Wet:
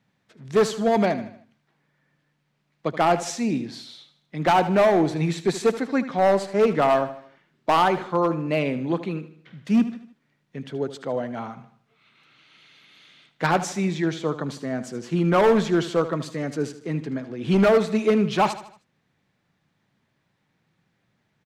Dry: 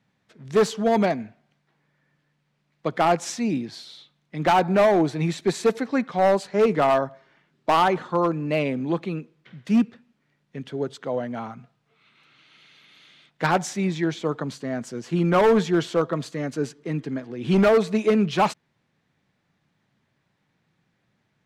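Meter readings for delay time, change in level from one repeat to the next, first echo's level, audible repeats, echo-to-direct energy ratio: 77 ms, -7.0 dB, -13.5 dB, 4, -12.5 dB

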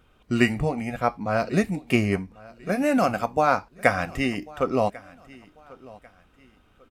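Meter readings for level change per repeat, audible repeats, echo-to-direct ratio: -9.5 dB, 2, -21.5 dB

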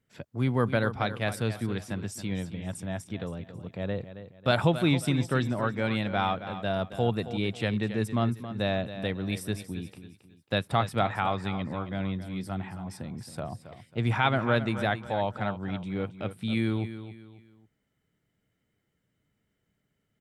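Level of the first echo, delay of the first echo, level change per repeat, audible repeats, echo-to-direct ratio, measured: -12.0 dB, 272 ms, -9.5 dB, 3, -11.5 dB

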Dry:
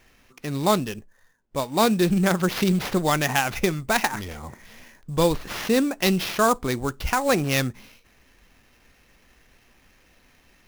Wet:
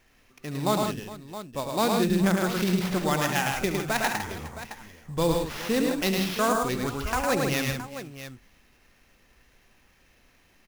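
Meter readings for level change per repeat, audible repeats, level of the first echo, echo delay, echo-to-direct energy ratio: no regular repeats, 5, -12.0 dB, 71 ms, -1.0 dB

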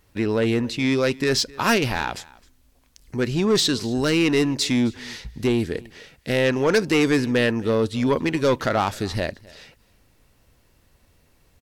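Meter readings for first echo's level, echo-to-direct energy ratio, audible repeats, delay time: -23.0 dB, -23.0 dB, 1, 262 ms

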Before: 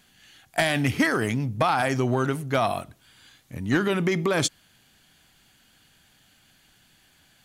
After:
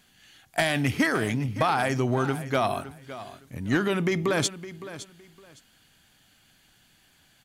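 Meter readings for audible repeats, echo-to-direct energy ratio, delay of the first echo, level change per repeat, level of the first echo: 2, -14.5 dB, 562 ms, -13.0 dB, -14.5 dB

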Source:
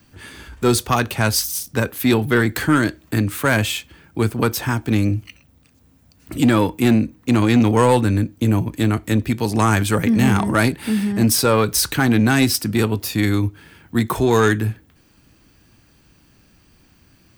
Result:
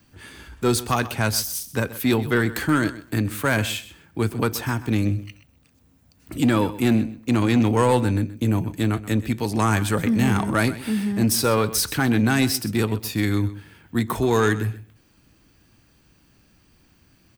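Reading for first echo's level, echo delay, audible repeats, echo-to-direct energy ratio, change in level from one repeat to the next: -16.0 dB, 128 ms, 2, -16.0 dB, -15.5 dB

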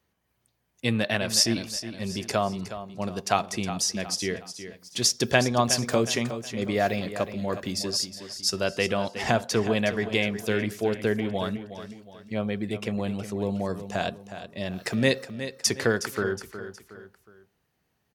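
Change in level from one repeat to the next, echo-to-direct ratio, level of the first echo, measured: -7.5 dB, -10.5 dB, -11.5 dB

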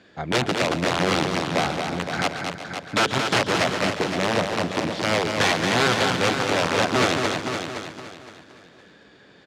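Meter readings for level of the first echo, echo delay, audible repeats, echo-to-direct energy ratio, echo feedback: -13.0 dB, 140 ms, 12, -2.0 dB, no regular repeats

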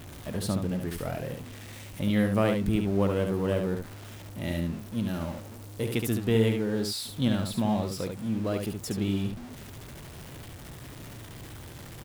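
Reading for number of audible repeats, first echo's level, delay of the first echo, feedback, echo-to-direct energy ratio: 1, -5.5 dB, 71 ms, no regular repeats, -5.5 dB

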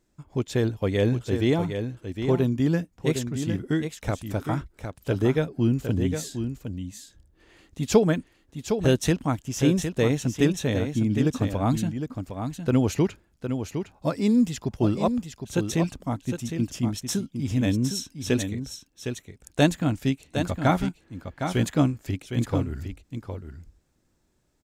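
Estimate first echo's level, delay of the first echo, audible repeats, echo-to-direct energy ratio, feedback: -7.5 dB, 760 ms, 1, -7.5 dB, no regular repeats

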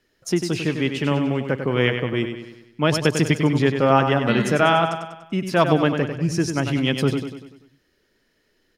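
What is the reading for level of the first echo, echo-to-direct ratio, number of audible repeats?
-7.5 dB, -6.0 dB, 5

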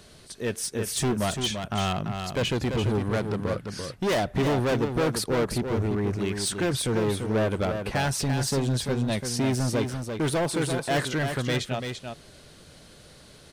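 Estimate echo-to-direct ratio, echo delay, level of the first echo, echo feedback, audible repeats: -6.5 dB, 340 ms, -6.5 dB, no regular repeats, 1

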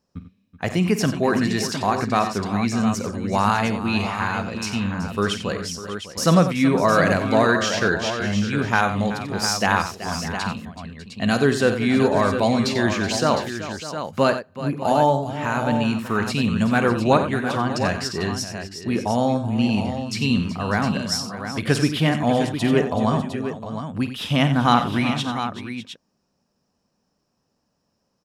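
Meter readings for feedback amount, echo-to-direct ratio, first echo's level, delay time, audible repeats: no regular repeats, -5.0 dB, -13.0 dB, 50 ms, 5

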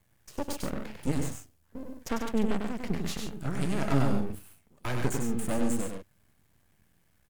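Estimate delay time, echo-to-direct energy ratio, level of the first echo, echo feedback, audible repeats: 98 ms, -3.0 dB, -4.5 dB, no regular repeats, 2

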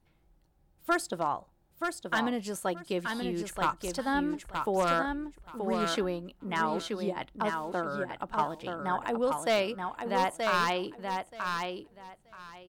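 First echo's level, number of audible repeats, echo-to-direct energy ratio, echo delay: -5.0 dB, 3, -5.0 dB, 928 ms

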